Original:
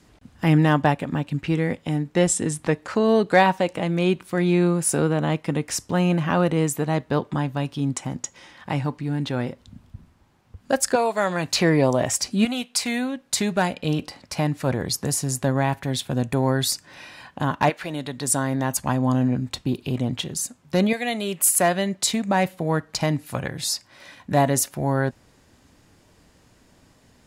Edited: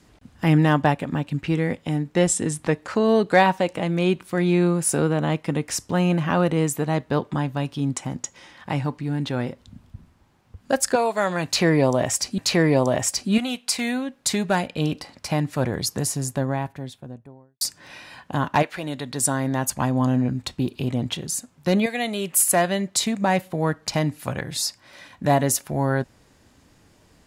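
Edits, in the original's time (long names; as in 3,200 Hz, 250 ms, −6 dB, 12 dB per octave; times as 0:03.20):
0:11.45–0:12.38: repeat, 2 plays
0:14.96–0:16.68: fade out and dull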